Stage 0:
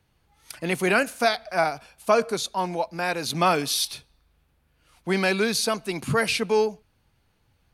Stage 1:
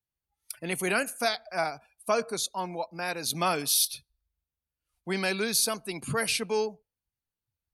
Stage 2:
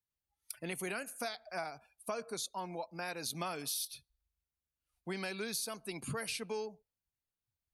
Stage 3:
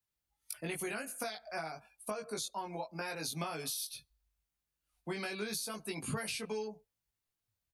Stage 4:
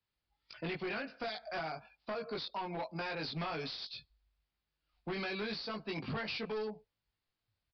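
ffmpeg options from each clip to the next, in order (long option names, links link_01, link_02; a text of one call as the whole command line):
ffmpeg -i in.wav -af "afftdn=noise_reduction=22:noise_floor=-44,aemphasis=mode=production:type=50fm,volume=-6.5dB" out.wav
ffmpeg -i in.wav -af "acompressor=threshold=-32dB:ratio=4,volume=-4.5dB" out.wav
ffmpeg -i in.wav -filter_complex "[0:a]asplit=2[link_01][link_02];[link_02]adelay=19,volume=-2dB[link_03];[link_01][link_03]amix=inputs=2:normalize=0,acrossover=split=190[link_04][link_05];[link_05]acompressor=threshold=-37dB:ratio=6[link_06];[link_04][link_06]amix=inputs=2:normalize=0,volume=1.5dB" out.wav
ffmpeg -i in.wav -af "asoftclip=type=hard:threshold=-38dB,aresample=11025,aresample=44100,volume=3.5dB" out.wav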